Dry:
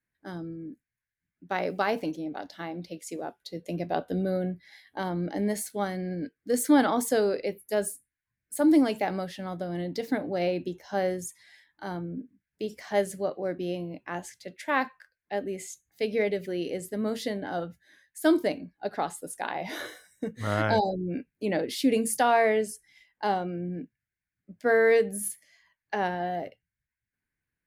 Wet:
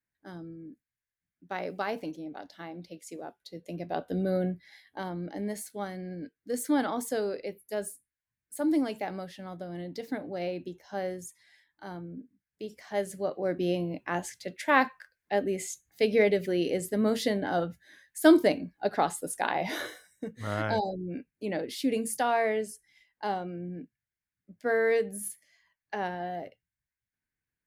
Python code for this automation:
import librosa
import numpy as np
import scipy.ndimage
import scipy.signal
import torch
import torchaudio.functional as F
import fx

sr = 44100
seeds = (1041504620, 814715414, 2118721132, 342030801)

y = fx.gain(x, sr, db=fx.line((3.79, -5.5), (4.41, 1.0), (5.2, -6.0), (12.9, -6.0), (13.65, 3.5), (19.64, 3.5), (20.24, -4.5)))